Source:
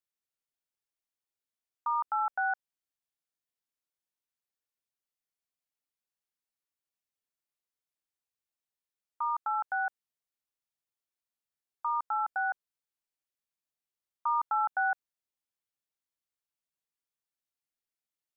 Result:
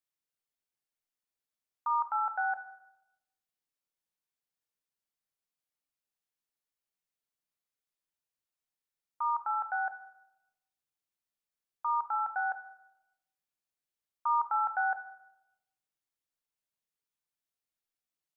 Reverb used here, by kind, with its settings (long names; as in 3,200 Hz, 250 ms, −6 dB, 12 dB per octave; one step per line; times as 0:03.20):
rectangular room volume 360 cubic metres, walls mixed, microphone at 0.48 metres
level −1.5 dB